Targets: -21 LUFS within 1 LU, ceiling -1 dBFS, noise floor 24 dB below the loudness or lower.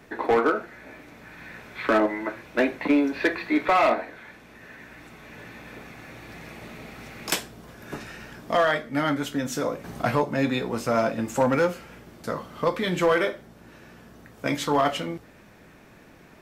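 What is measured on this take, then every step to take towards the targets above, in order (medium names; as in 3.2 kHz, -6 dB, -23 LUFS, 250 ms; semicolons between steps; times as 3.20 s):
clipped samples 0.5%; clipping level -14.0 dBFS; loudness -25.0 LUFS; peak level -14.0 dBFS; loudness target -21.0 LUFS
-> clip repair -14 dBFS; trim +4 dB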